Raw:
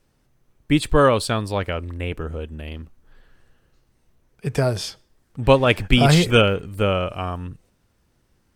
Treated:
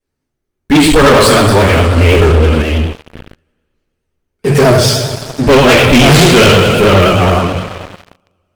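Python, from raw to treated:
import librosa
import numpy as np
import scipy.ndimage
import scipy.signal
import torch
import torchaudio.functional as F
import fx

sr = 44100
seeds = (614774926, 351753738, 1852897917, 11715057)

y = fx.rev_double_slope(x, sr, seeds[0], early_s=0.63, late_s=2.9, knee_db=-15, drr_db=-10.0)
y = fx.vibrato(y, sr, rate_hz=9.5, depth_cents=82.0)
y = fx.leveller(y, sr, passes=5)
y = fx.env_flatten(y, sr, amount_pct=50, at=(1.96, 2.61), fade=0.02)
y = y * 10.0 ** (-9.0 / 20.0)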